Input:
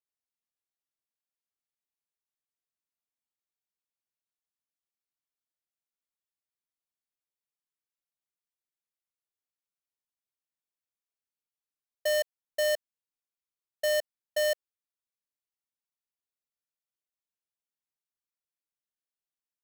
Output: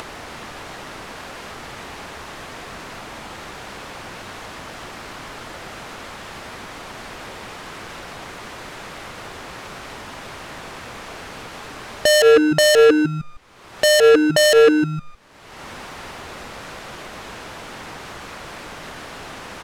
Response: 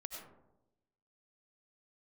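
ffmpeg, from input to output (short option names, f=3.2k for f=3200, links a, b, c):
-filter_complex "[0:a]lowpass=1.3k,acompressor=mode=upward:threshold=-39dB:ratio=2.5,asplit=5[a][b][c][d][e];[b]adelay=154,afreqshift=-150,volume=-10.5dB[f];[c]adelay=308,afreqshift=-300,volume=-19.9dB[g];[d]adelay=462,afreqshift=-450,volume=-29.2dB[h];[e]adelay=616,afreqshift=-600,volume=-38.6dB[i];[a][f][g][h][i]amix=inputs=5:normalize=0,asoftclip=type=tanh:threshold=-38dB,asplit=2[j][k];[1:a]atrim=start_sample=2205,afade=t=out:st=0.17:d=0.01,atrim=end_sample=7938,asetrate=38367,aresample=44100[l];[k][l]afir=irnorm=-1:irlink=0,volume=-17.5dB[m];[j][m]amix=inputs=2:normalize=0,crystalizer=i=4:c=0,alimiter=level_in=34dB:limit=-1dB:release=50:level=0:latency=1,volume=-4dB"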